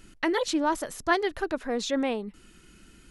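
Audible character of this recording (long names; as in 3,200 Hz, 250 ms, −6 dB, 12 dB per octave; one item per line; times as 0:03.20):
background noise floor −56 dBFS
spectral slope −3.0 dB per octave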